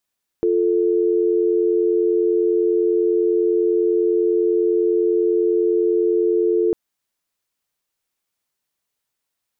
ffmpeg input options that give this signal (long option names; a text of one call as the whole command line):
ffmpeg -f lavfi -i "aevalsrc='0.133*(sin(2*PI*350*t)+sin(2*PI*440*t))':duration=6.3:sample_rate=44100" out.wav